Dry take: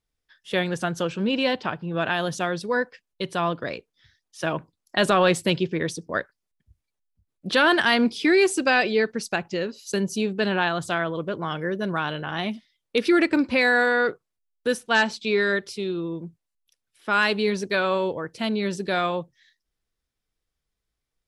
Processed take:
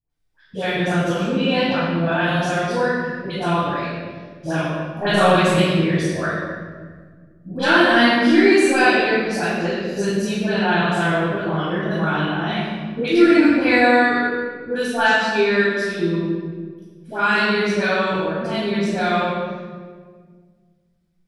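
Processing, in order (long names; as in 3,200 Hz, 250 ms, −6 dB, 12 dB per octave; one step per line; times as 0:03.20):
all-pass dispersion highs, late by 102 ms, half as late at 920 Hz
convolution reverb RT60 1.7 s, pre-delay 12 ms, DRR −9 dB
level −7.5 dB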